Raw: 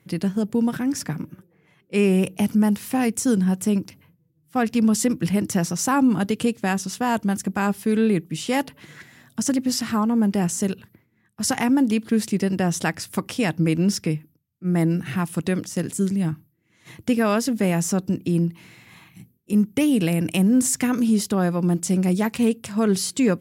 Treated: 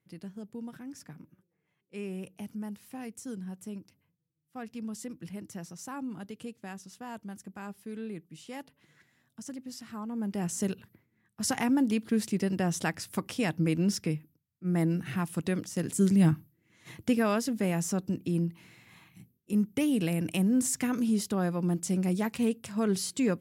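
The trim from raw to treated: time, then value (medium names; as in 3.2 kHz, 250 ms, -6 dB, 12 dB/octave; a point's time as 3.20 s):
9.88 s -19.5 dB
10.62 s -7 dB
15.76 s -7 dB
16.24 s +1.5 dB
17.44 s -8 dB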